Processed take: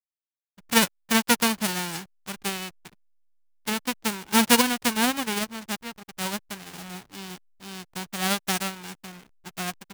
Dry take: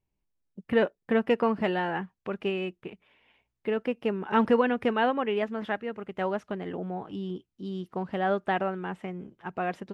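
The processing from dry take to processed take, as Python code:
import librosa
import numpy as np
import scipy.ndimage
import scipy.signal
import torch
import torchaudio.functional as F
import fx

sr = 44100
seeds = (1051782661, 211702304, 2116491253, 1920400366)

y = fx.envelope_flatten(x, sr, power=0.1)
y = fx.backlash(y, sr, play_db=-32.0)
y = fx.upward_expand(y, sr, threshold_db=-41.0, expansion=1.5)
y = y * 10.0 ** (5.0 / 20.0)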